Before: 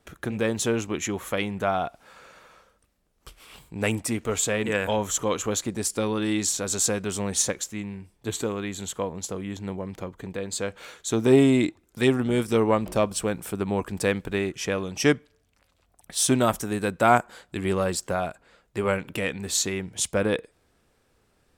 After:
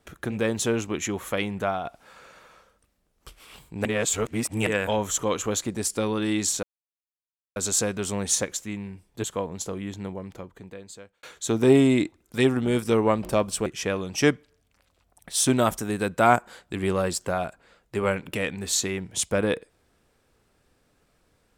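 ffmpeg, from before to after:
-filter_complex "[0:a]asplit=8[s0][s1][s2][s3][s4][s5][s6][s7];[s0]atrim=end=1.85,asetpts=PTS-STARTPTS,afade=t=out:st=1.6:d=0.25:silence=0.473151[s8];[s1]atrim=start=1.85:end=3.852,asetpts=PTS-STARTPTS,afade=t=in:d=0.004:c=hsin:silence=0.473151[s9];[s2]atrim=start=3.848:end=4.672,asetpts=PTS-STARTPTS,areverse[s10];[s3]atrim=start=4.668:end=6.63,asetpts=PTS-STARTPTS,afade=t=out:st=1.958:d=0.004:c=hsin,apad=pad_dur=0.93[s11];[s4]atrim=start=6.63:end=8.312,asetpts=PTS-STARTPTS,afade=t=in:d=0.004:c=hsin[s12];[s5]atrim=start=8.868:end=10.86,asetpts=PTS-STARTPTS,afade=t=out:st=0.602:d=1.39[s13];[s6]atrim=start=10.86:end=13.292,asetpts=PTS-STARTPTS,afade=t=in:d=0.004:c=hsin[s14];[s7]atrim=start=14.478[s15];[s8][s9]concat=n=2:v=0:a=1[s16];[s16][s10]acrossfade=d=0.004:c1=hsin:c2=hsin[s17];[s11][s12]concat=n=2:v=0:a=1[s18];[s17][s18]acrossfade=d=0.004:c1=hsin:c2=hsin[s19];[s13][s14]concat=n=2:v=0:a=1[s20];[s19][s20]acrossfade=d=0.004:c1=hsin:c2=hsin[s21];[s21][s15]acrossfade=d=0.004:c1=hsin:c2=hsin"

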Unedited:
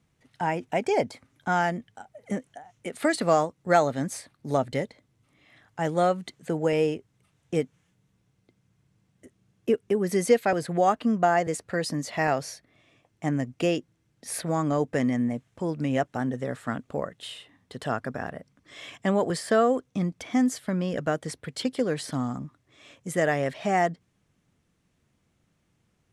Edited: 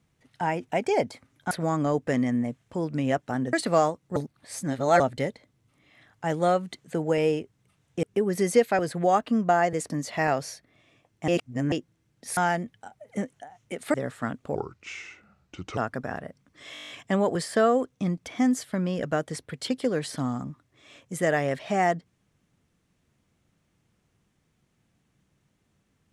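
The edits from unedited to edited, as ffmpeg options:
-filter_complex "[0:a]asplit=21[s0][s1][s2][s3][s4][s5][s6][s7][s8][s9][s10][s11][s12][s13][s14][s15][s16][s17][s18][s19][s20];[s0]atrim=end=1.512[s21];[s1]atrim=start=14.368:end=16.392[s22];[s2]atrim=start=3.078:end=3.712[s23];[s3]atrim=start=3.708:end=4.552,asetpts=PTS-STARTPTS,areverse[s24];[s4]atrim=start=4.548:end=7.582[s25];[s5]atrim=start=9.768:end=11.642[s26];[s6]atrim=start=11.898:end=13.282[s27];[s7]atrim=start=13.278:end=13.722,asetpts=PTS-STARTPTS,areverse[s28];[s8]atrim=start=13.718:end=14.372[s29];[s9]atrim=start=1.508:end=3.082[s30];[s10]atrim=start=16.388:end=17.004[s31];[s11]atrim=start=17:end=17.88,asetpts=PTS-STARTPTS,asetrate=31752,aresample=44100[s32];[s12]atrim=start=17.876:end=18.862[s33];[s13]atrim=start=18.838:end=18.862[s34];[s14]atrim=start=18.838:end=18.862[s35];[s15]atrim=start=18.838:end=18.862[s36];[s16]atrim=start=18.838:end=18.862[s37];[s17]atrim=start=18.838:end=18.862[s38];[s18]atrim=start=18.838:end=18.862[s39];[s19]atrim=start=18.838:end=18.862[s40];[s20]atrim=start=18.838[s41];[s21][s22]acrossfade=d=0.004:c1=hsin:c2=hsin[s42];[s42][s23]acrossfade=d=0.004:c1=hsin:c2=hsin[s43];[s43][s24]acrossfade=d=0.004:c1=hsin:c2=hsin[s44];[s44][s25]acrossfade=d=0.004:c1=hsin:c2=hsin[s45];[s45][s26]acrossfade=d=0.004:c1=hsin:c2=hsin[s46];[s46][s27]acrossfade=d=0.004:c1=hsin:c2=hsin[s47];[s47][s28]acrossfade=d=0.004:c1=hsin:c2=hsin[s48];[s48][s29]acrossfade=d=0.004:c1=hsin:c2=hsin[s49];[s49][s30]acrossfade=d=0.004:c1=hsin:c2=hsin[s50];[s50][s31]acrossfade=d=0.004:c1=hsin:c2=hsin[s51];[s51][s32]acrossfade=d=0.004:c1=hsin:c2=hsin[s52];[s52][s33]acrossfade=d=0.004:c1=hsin:c2=hsin[s53];[s53][s34]acrossfade=d=0.004:c1=hsin:c2=hsin[s54];[s54][s35]acrossfade=d=0.004:c1=hsin:c2=hsin[s55];[s55][s36]acrossfade=d=0.004:c1=hsin:c2=hsin[s56];[s56][s37]acrossfade=d=0.004:c1=hsin:c2=hsin[s57];[s57][s38]acrossfade=d=0.004:c1=hsin:c2=hsin[s58];[s58][s39]acrossfade=d=0.004:c1=hsin:c2=hsin[s59];[s59][s40]acrossfade=d=0.004:c1=hsin:c2=hsin[s60];[s60][s41]acrossfade=d=0.004:c1=hsin:c2=hsin"

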